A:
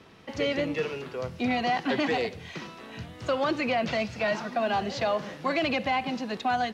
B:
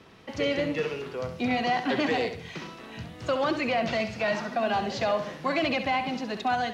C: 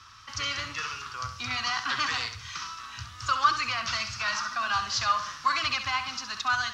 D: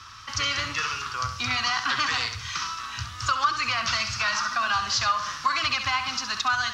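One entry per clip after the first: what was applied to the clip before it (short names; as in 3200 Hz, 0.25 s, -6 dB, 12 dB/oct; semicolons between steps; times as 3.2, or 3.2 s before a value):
flutter echo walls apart 11.5 m, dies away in 0.41 s
EQ curve 110 Hz 0 dB, 160 Hz -19 dB, 280 Hz -20 dB, 450 Hz -26 dB, 730 Hz -17 dB, 1200 Hz +11 dB, 2000 Hz -3 dB, 3900 Hz +4 dB, 5600 Hz +13 dB, 10000 Hz -1 dB; gain +1.5 dB
compressor 2.5:1, threshold -29 dBFS, peak gain reduction 9 dB; gain +6.5 dB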